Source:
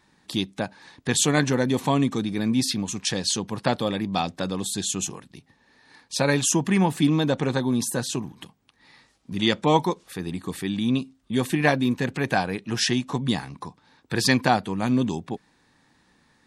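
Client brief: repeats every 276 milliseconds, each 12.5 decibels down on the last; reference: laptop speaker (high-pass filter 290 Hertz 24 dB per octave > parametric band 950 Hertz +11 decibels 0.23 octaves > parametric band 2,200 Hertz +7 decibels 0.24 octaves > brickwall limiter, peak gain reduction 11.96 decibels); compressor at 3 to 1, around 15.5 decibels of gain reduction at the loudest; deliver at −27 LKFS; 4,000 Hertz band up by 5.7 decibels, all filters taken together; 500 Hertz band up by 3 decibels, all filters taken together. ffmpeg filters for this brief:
ffmpeg -i in.wav -af "equalizer=frequency=500:width_type=o:gain=3.5,equalizer=frequency=4000:width_type=o:gain=6.5,acompressor=threshold=-35dB:ratio=3,highpass=frequency=290:width=0.5412,highpass=frequency=290:width=1.3066,equalizer=frequency=950:width_type=o:width=0.23:gain=11,equalizer=frequency=2200:width_type=o:width=0.24:gain=7,aecho=1:1:276|552|828:0.237|0.0569|0.0137,volume=12.5dB,alimiter=limit=-16dB:level=0:latency=1" out.wav

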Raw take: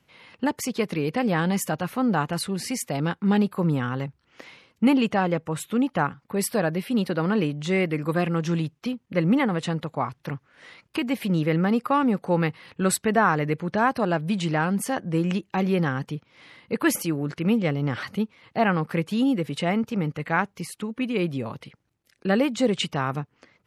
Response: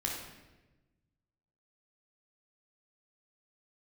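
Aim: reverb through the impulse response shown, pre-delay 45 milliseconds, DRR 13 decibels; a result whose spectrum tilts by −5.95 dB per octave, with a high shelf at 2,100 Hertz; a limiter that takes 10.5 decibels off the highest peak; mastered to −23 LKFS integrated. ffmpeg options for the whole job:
-filter_complex "[0:a]highshelf=frequency=2100:gain=-7,alimiter=limit=-20dB:level=0:latency=1,asplit=2[link_01][link_02];[1:a]atrim=start_sample=2205,adelay=45[link_03];[link_02][link_03]afir=irnorm=-1:irlink=0,volume=-16.5dB[link_04];[link_01][link_04]amix=inputs=2:normalize=0,volume=6.5dB"

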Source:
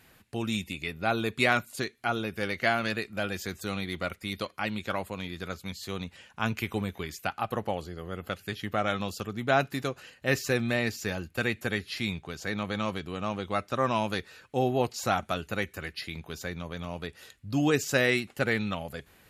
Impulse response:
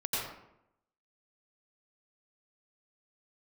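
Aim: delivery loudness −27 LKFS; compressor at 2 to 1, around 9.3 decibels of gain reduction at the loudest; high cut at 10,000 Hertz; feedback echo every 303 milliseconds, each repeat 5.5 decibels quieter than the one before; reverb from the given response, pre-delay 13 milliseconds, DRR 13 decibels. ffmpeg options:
-filter_complex "[0:a]lowpass=10000,acompressor=threshold=-37dB:ratio=2,aecho=1:1:303|606|909|1212|1515|1818|2121:0.531|0.281|0.149|0.079|0.0419|0.0222|0.0118,asplit=2[link_01][link_02];[1:a]atrim=start_sample=2205,adelay=13[link_03];[link_02][link_03]afir=irnorm=-1:irlink=0,volume=-19.5dB[link_04];[link_01][link_04]amix=inputs=2:normalize=0,volume=9dB"

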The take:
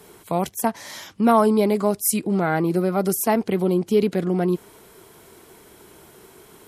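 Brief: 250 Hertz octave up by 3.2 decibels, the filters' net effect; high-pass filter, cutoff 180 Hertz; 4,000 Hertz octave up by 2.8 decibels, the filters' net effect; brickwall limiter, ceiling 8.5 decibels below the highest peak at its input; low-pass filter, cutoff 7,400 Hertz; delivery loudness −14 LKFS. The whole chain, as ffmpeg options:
ffmpeg -i in.wav -af "highpass=180,lowpass=7400,equalizer=frequency=250:width_type=o:gain=6.5,equalizer=frequency=4000:width_type=o:gain=4,volume=7.5dB,alimiter=limit=-3.5dB:level=0:latency=1" out.wav

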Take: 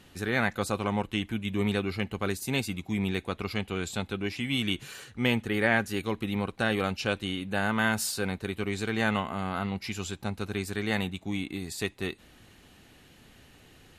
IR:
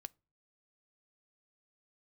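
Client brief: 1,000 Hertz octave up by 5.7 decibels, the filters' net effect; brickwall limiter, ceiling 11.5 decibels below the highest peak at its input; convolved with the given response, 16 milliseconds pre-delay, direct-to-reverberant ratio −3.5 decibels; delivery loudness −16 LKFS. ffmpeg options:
-filter_complex "[0:a]equalizer=frequency=1000:width_type=o:gain=7.5,alimiter=limit=-18.5dB:level=0:latency=1,asplit=2[link_01][link_02];[1:a]atrim=start_sample=2205,adelay=16[link_03];[link_02][link_03]afir=irnorm=-1:irlink=0,volume=9dB[link_04];[link_01][link_04]amix=inputs=2:normalize=0,volume=10.5dB"

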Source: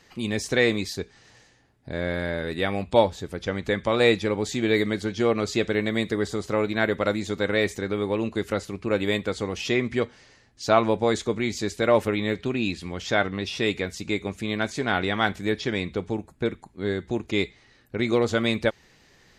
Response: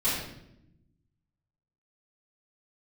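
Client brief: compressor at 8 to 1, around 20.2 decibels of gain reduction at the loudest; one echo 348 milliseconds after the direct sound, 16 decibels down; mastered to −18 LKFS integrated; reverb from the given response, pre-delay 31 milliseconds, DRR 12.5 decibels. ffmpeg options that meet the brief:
-filter_complex "[0:a]acompressor=threshold=-35dB:ratio=8,aecho=1:1:348:0.158,asplit=2[link_01][link_02];[1:a]atrim=start_sample=2205,adelay=31[link_03];[link_02][link_03]afir=irnorm=-1:irlink=0,volume=-23dB[link_04];[link_01][link_04]amix=inputs=2:normalize=0,volume=21dB"

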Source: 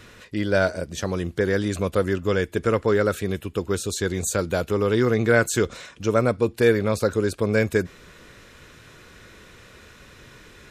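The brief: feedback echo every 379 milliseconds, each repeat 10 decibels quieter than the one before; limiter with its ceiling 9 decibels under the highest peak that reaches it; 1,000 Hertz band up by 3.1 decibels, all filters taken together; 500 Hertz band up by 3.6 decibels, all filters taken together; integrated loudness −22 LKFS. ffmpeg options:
ffmpeg -i in.wav -af "equalizer=frequency=500:width_type=o:gain=3.5,equalizer=frequency=1000:width_type=o:gain=3.5,alimiter=limit=-10.5dB:level=0:latency=1,aecho=1:1:379|758|1137|1516:0.316|0.101|0.0324|0.0104,volume=0.5dB" out.wav

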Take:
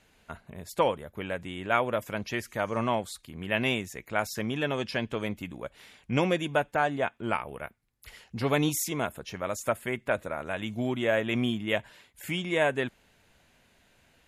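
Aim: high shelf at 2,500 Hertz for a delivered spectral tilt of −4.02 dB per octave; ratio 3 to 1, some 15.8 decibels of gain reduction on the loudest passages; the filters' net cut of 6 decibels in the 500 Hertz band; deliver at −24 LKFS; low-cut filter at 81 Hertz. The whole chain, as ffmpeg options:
ffmpeg -i in.wav -af "highpass=81,equalizer=frequency=500:width_type=o:gain=-8,highshelf=frequency=2500:gain=5.5,acompressor=threshold=-44dB:ratio=3,volume=20dB" out.wav

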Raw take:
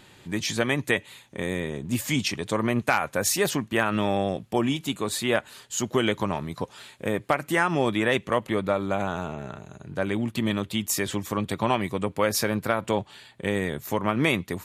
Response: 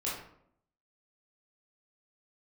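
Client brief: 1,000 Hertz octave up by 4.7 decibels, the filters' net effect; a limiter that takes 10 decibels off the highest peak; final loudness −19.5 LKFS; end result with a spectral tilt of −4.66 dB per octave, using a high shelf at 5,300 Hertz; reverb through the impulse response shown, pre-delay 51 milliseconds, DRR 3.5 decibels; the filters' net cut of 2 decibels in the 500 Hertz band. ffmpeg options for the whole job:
-filter_complex "[0:a]equalizer=frequency=500:width_type=o:gain=-4.5,equalizer=frequency=1000:width_type=o:gain=7.5,highshelf=frequency=5300:gain=-5.5,alimiter=limit=-14dB:level=0:latency=1,asplit=2[link_01][link_02];[1:a]atrim=start_sample=2205,adelay=51[link_03];[link_02][link_03]afir=irnorm=-1:irlink=0,volume=-8dB[link_04];[link_01][link_04]amix=inputs=2:normalize=0,volume=7.5dB"

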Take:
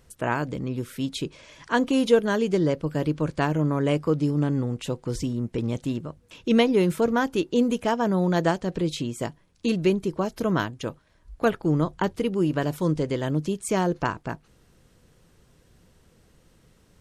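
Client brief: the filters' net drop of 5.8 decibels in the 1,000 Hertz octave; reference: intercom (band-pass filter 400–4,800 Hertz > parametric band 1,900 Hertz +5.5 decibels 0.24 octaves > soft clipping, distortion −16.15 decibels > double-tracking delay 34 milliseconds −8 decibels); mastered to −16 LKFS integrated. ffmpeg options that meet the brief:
ffmpeg -i in.wav -filter_complex "[0:a]highpass=400,lowpass=4800,equalizer=frequency=1000:width_type=o:gain=-7.5,equalizer=frequency=1900:width_type=o:width=0.24:gain=5.5,asoftclip=threshold=-18.5dB,asplit=2[link_01][link_02];[link_02]adelay=34,volume=-8dB[link_03];[link_01][link_03]amix=inputs=2:normalize=0,volume=15.5dB" out.wav

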